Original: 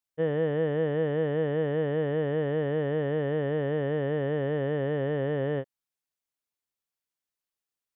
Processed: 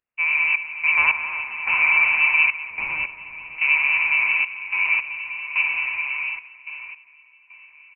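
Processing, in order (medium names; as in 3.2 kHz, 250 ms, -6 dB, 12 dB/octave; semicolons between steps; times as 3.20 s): 0.97–1.41 s: peaking EQ 1.8 kHz +14 dB 2.1 oct; 4.32–4.86 s: robot voice 93.4 Hz; feedback delay 679 ms, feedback 15%, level -8 dB; plate-style reverb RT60 4.4 s, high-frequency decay 0.9×, DRR 0.5 dB; trance gate "xxxx..xx....xx" 108 bpm -12 dB; frequency inversion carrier 2.8 kHz; 2.70–3.58 s: tilt shelf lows +9 dB, about 840 Hz; trim +5 dB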